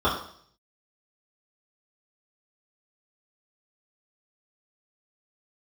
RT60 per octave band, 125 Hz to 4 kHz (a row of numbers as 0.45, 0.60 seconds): 0.80, 0.60, 0.60, 0.55, 0.55, 0.65 seconds